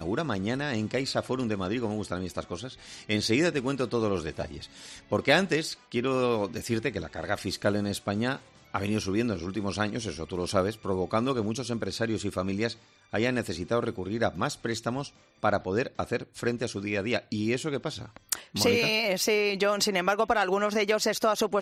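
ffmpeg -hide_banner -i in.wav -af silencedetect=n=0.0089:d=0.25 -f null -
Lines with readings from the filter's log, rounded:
silence_start: 8.39
silence_end: 8.74 | silence_duration: 0.36
silence_start: 12.73
silence_end: 13.13 | silence_duration: 0.40
silence_start: 15.09
silence_end: 15.43 | silence_duration: 0.34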